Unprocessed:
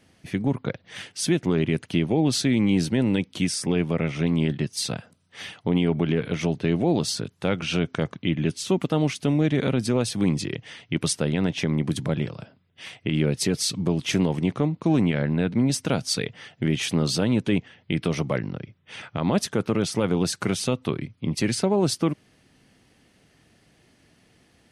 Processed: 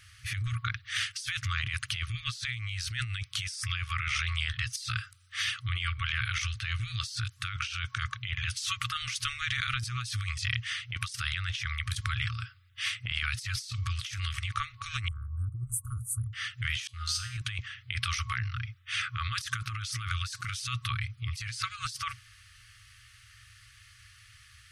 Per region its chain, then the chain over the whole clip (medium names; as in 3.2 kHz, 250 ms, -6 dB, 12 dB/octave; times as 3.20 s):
15.08–16.33 s: inverse Chebyshev band-stop 1.7–5.4 kHz, stop band 50 dB + tape noise reduction on one side only decoder only
16.87–17.38 s: gate -27 dBFS, range -22 dB + feedback comb 83 Hz, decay 0.79 s, harmonics odd, mix 90% + decay stretcher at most 28 dB/s
whole clip: FFT band-reject 120–1100 Hz; dynamic bell 5.2 kHz, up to +4 dB, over -45 dBFS, Q 1.6; compressor with a negative ratio -37 dBFS, ratio -1; trim +3.5 dB